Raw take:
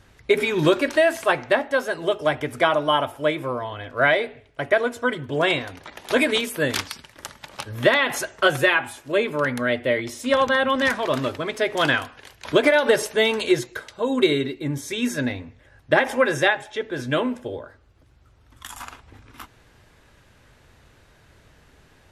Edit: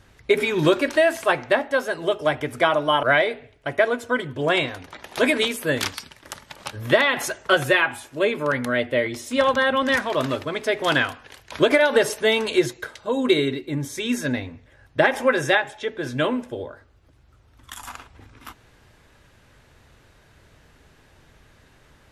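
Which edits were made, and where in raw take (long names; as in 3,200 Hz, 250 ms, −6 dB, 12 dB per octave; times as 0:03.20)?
0:03.03–0:03.96: remove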